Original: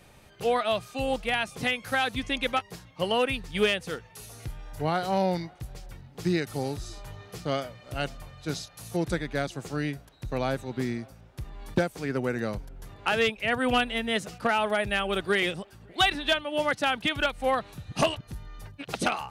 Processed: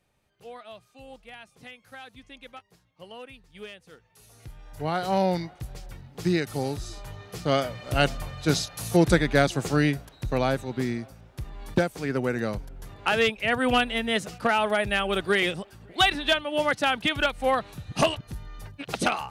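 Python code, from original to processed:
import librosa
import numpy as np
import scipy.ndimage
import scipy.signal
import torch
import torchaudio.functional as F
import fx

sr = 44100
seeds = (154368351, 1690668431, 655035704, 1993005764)

y = fx.gain(x, sr, db=fx.line((3.85, -17.5), (4.29, -9.0), (5.12, 2.0), (7.3, 2.0), (7.76, 9.0), (9.68, 9.0), (10.76, 2.0)))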